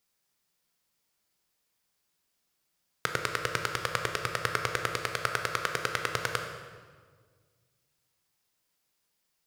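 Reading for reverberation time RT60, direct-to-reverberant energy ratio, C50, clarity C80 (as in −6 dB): 1.7 s, 4.0 dB, 6.0 dB, 7.5 dB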